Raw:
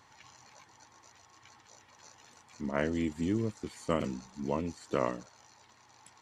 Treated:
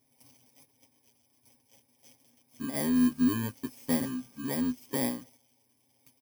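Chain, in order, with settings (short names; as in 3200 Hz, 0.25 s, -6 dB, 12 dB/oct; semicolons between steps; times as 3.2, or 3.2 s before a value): FFT order left unsorted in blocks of 32 samples; gate -56 dBFS, range -8 dB; bell 250 Hz +12 dB 0.31 oct; comb 7.5 ms, depth 84%; gain -4.5 dB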